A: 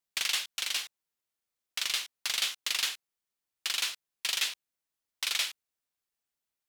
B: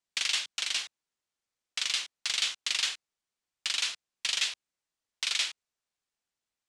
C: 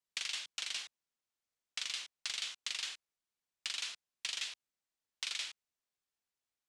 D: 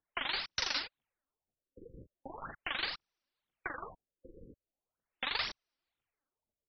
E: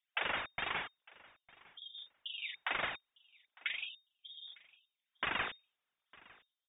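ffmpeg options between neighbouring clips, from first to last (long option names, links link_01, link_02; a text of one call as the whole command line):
ffmpeg -i in.wav -filter_complex "[0:a]lowpass=frequency=8600:width=0.5412,lowpass=frequency=8600:width=1.3066,acrossover=split=220|1700|4200[link_01][link_02][link_03][link_04];[link_02]alimiter=level_in=13.5dB:limit=-24dB:level=0:latency=1:release=88,volume=-13.5dB[link_05];[link_01][link_05][link_03][link_04]amix=inputs=4:normalize=0,volume=1.5dB" out.wav
ffmpeg -i in.wav -af "acompressor=threshold=-30dB:ratio=6,volume=-5dB" out.wav
ffmpeg -i in.wav -af "aeval=exprs='val(0)*sin(2*PI*1300*n/s)':channel_layout=same,aphaser=in_gain=1:out_gain=1:delay=4:decay=0.64:speed=2:type=triangular,afftfilt=real='re*lt(b*sr/1024,520*pow(6200/520,0.5+0.5*sin(2*PI*0.4*pts/sr)))':imag='im*lt(b*sr/1024,520*pow(6200/520,0.5+0.5*sin(2*PI*0.4*pts/sr)))':win_size=1024:overlap=0.75,volume=7dB" out.wav
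ffmpeg -i in.wav -af "volume=27.5dB,asoftclip=hard,volume=-27.5dB,aecho=1:1:905|1810:0.0668|0.01,lowpass=frequency=3100:width_type=q:width=0.5098,lowpass=frequency=3100:width_type=q:width=0.6013,lowpass=frequency=3100:width_type=q:width=0.9,lowpass=frequency=3100:width_type=q:width=2.563,afreqshift=-3700,volume=2dB" out.wav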